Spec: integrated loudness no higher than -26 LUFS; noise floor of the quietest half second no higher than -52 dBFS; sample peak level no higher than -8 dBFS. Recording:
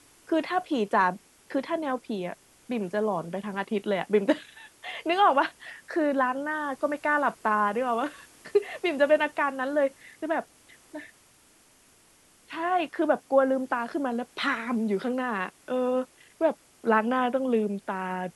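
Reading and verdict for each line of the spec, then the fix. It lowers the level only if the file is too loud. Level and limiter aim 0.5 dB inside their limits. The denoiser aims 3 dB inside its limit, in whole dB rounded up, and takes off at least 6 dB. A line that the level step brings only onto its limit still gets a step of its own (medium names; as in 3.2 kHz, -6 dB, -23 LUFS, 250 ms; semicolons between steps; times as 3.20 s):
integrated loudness -27.5 LUFS: pass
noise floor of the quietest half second -60 dBFS: pass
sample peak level -9.5 dBFS: pass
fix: none needed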